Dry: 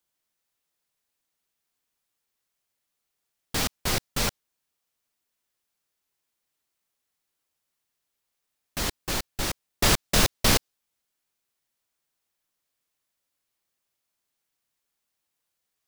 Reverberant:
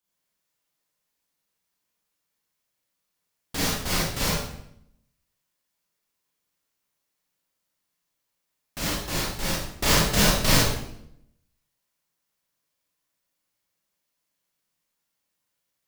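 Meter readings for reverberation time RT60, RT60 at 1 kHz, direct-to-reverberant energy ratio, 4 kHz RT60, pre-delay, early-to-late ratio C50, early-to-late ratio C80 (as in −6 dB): 0.75 s, 0.70 s, −6.0 dB, 0.60 s, 28 ms, −0.5 dB, 3.5 dB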